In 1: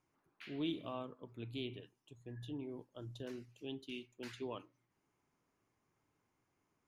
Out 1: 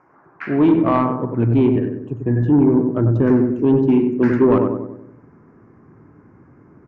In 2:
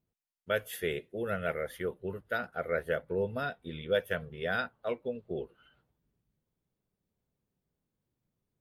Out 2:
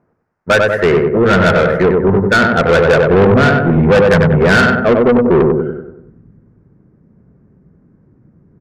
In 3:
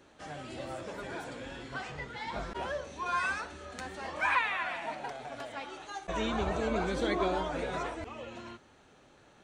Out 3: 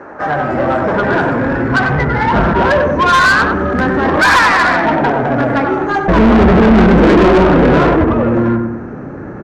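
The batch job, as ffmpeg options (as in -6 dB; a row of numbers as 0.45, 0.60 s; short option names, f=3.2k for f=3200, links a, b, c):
-filter_complex "[0:a]firequalizer=gain_entry='entry(1600,0);entry(3400,-27);entry(5200,-9)':delay=0.05:min_phase=1,adynamicsmooth=sensitivity=5:basefreq=2.4k,asplit=2[a][b];[b]adelay=95,lowpass=f=1.4k:p=1,volume=-4.5dB,asplit=2[c][d];[d]adelay=95,lowpass=f=1.4k:p=1,volume=0.51,asplit=2[e][f];[f]adelay=95,lowpass=f=1.4k:p=1,volume=0.51,asplit=2[g][h];[h]adelay=95,lowpass=f=1.4k:p=1,volume=0.51,asplit=2[i][j];[j]adelay=95,lowpass=f=1.4k:p=1,volume=0.51,asplit=2[k][l];[l]adelay=95,lowpass=f=1.4k:p=1,volume=0.51,asplit=2[m][n];[n]adelay=95,lowpass=f=1.4k:p=1,volume=0.51[o];[c][e][g][i][k][m][o]amix=inputs=7:normalize=0[p];[a][p]amix=inputs=2:normalize=0,asubboost=boost=10:cutoff=240,asplit=2[q][r];[r]asoftclip=type=tanh:threshold=-15.5dB,volume=-8dB[s];[q][s]amix=inputs=2:normalize=0,asplit=2[t][u];[u]highpass=f=720:p=1,volume=31dB,asoftclip=type=tanh:threshold=-6dB[v];[t][v]amix=inputs=2:normalize=0,lowpass=f=5.5k:p=1,volume=-6dB,aresample=32000,aresample=44100,volume=5dB"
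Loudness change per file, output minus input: +29.0, +24.0, +23.5 LU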